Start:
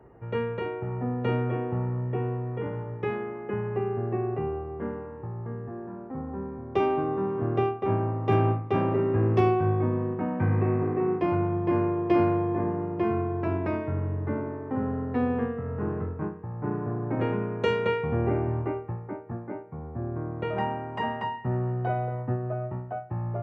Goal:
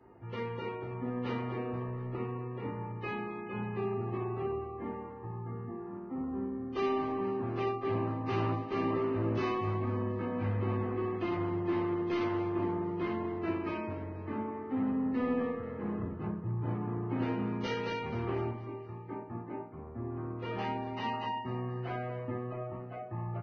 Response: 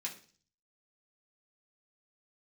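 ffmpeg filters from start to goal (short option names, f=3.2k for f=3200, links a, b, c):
-filter_complex "[0:a]asettb=1/sr,asplit=3[a][b][c];[a]atrim=end=15.984[d];[b]atrim=start=15.98:end=16.74,asetpts=PTS-STARTPTS,afade=t=in:d=0.004:c=qsin,afade=t=out:st=0.756:d=0.004:c=qsin,equalizer=f=110:t=o:w=1.2:g=12[e];[c]atrim=start=16.736[f];[d][e]acrossfade=d=0.004:c1=hsin:c2=qsin[g];[g][f]acrossfade=d=0.004:c1=qsin:c2=hsin,asettb=1/sr,asplit=3[h][i][j];[h]atrim=end=18.504[k];[i]atrim=start=18.5:end=19.09,asetpts=PTS-STARTPTS,afade=t=in:d=0.004:c=qsin,afade=t=out:st=0.586:d=0.004:c=qsin,acompressor=threshold=-37dB:ratio=6[l];[j]atrim=start=19.086[m];[k][l]acrossfade=d=0.004:c1=hsin:c2=qsin[n];[n][m]acrossfade=d=0.004:c1=qsin:c2=hsin,asoftclip=type=tanh:threshold=-25.5dB,asplit=2[o][p];[p]adelay=18,volume=-8.5dB[q];[o][q]amix=inputs=2:normalize=0,aecho=1:1:241|482|723|964|1205:0.178|0.0871|0.0427|0.0209|0.0103[r];[1:a]atrim=start_sample=2205,asetrate=52920,aresample=44100[s];[r][s]afir=irnorm=-1:irlink=0" -ar 16000 -c:a libvorbis -b:a 16k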